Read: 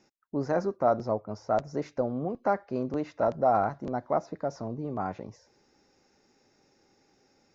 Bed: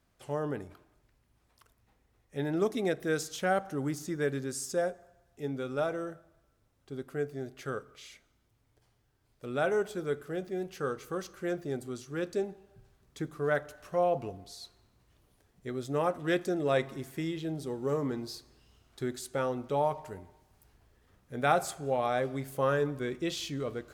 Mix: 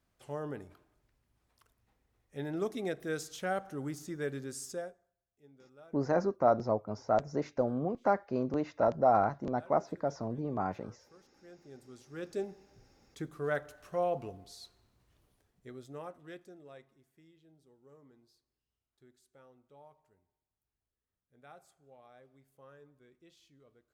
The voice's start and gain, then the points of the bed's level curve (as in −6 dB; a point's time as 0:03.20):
5.60 s, −1.5 dB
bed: 0:04.70 −5.5 dB
0:05.17 −25 dB
0:11.32 −25 dB
0:12.40 −4 dB
0:15.24 −4 dB
0:16.98 −28.5 dB